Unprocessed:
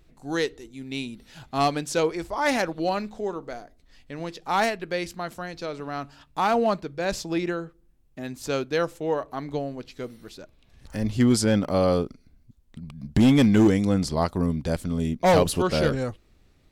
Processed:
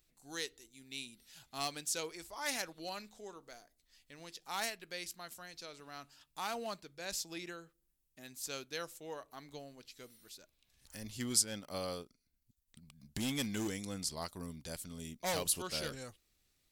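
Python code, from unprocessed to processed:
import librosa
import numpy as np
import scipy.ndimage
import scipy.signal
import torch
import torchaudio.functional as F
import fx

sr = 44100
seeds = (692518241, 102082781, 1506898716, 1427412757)

y = F.preemphasis(torch.from_numpy(x), 0.9).numpy()
y = fx.transient(y, sr, attack_db=2, sustain_db=-6, at=(11.24, 12.81))
y = y * librosa.db_to_amplitude(-1.5)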